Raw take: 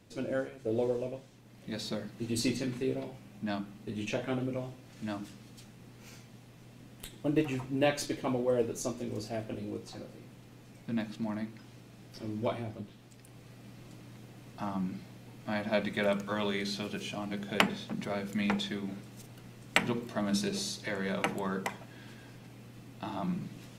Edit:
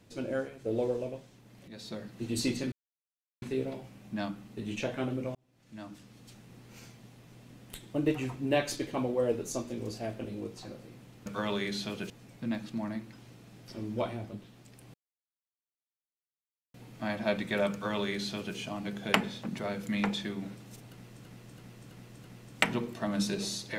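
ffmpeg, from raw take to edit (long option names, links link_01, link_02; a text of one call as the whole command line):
ffmpeg -i in.wav -filter_complex "[0:a]asplit=12[link_01][link_02][link_03][link_04][link_05][link_06][link_07][link_08][link_09][link_10][link_11][link_12];[link_01]atrim=end=1.68,asetpts=PTS-STARTPTS,afade=type=out:start_time=1.676:duration=0.004:curve=hsin:silence=0.251189[link_13];[link_02]atrim=start=1.68:end=2.72,asetpts=PTS-STARTPTS,afade=type=in:duration=0.53:silence=0.251189,afade=type=out:start_time=1.036:duration=0.004:curve=hsin,apad=pad_dur=0.7[link_14];[link_03]atrim=start=2.72:end=4.65,asetpts=PTS-STARTPTS,afade=type=in:duration=0.004:curve=hsin,afade=type=out:start_time=1.926:duration=0.004:curve=hsin[link_15];[link_04]atrim=start=4.65:end=10.562,asetpts=PTS-STARTPTS,afade=type=in:duration=1.1[link_16];[link_05]atrim=start=16.188:end=17.032[link_17];[link_06]atrim=start=10.558:end=13.4,asetpts=PTS-STARTPTS,afade=type=out:start_time=2.838:duration=0.004:curve=hsin[link_18];[link_07]atrim=start=13.4:end=15.2,asetpts=PTS-STARTPTS,volume=0[link_19];[link_08]atrim=start=15.2:end=19.712,asetpts=PTS-STARTPTS,afade=type=in:duration=0.004:curve=hsin[link_20];[link_09]atrim=start=19.378:end=19.712[link_21];[link_10]atrim=start=19.378:end=19.712[link_22];[link_11]atrim=start=19.378:end=19.712[link_23];[link_12]atrim=start=19.378[link_24];[link_13][link_14][link_15][link_16]concat=n=4:v=0:a=1[link_25];[link_25][link_17]acrossfade=duration=0.004:curve1=hsin:curve2=hsin[link_26];[link_18][link_19][link_20]concat=n=3:v=0:a=1[link_27];[link_26][link_27]acrossfade=duration=0.004:curve1=hsin:curve2=hsin[link_28];[link_28][link_21]acrossfade=duration=0.004:curve1=hsin:curve2=hsin[link_29];[link_29][link_22]acrossfade=duration=0.004:curve1=hsin:curve2=hsin[link_30];[link_30][link_23]acrossfade=duration=0.004:curve1=hsin:curve2=hsin[link_31];[link_31][link_24]acrossfade=duration=0.004:curve1=hsin:curve2=hsin" out.wav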